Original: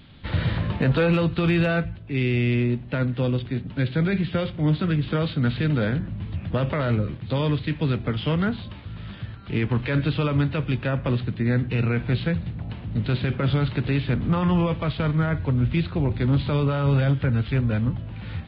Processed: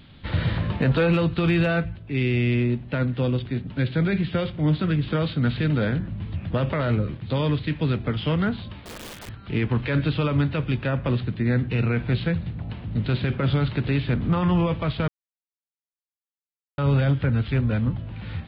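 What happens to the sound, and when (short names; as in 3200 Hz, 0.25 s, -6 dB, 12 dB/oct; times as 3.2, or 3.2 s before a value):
8.8–9.29 wrapped overs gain 34 dB
15.08–16.78 mute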